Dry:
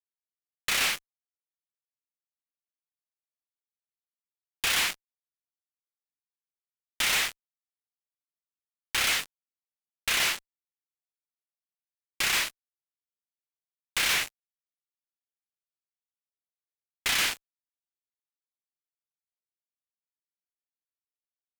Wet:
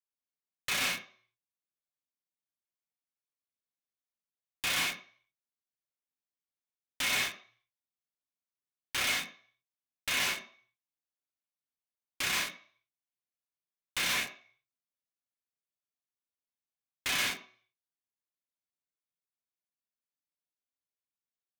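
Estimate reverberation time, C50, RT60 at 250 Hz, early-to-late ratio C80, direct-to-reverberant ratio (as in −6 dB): 0.45 s, 11.5 dB, 0.35 s, 15.0 dB, 1.0 dB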